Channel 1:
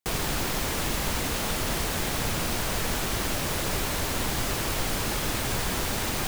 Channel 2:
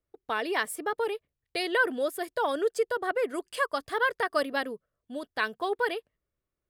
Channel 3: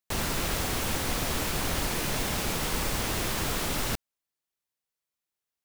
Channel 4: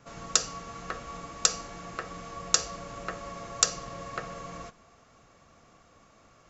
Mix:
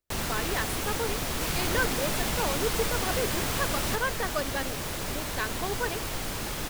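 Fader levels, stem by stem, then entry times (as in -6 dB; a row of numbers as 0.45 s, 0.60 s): -5.0 dB, -4.0 dB, -1.5 dB, mute; 1.35 s, 0.00 s, 0.00 s, mute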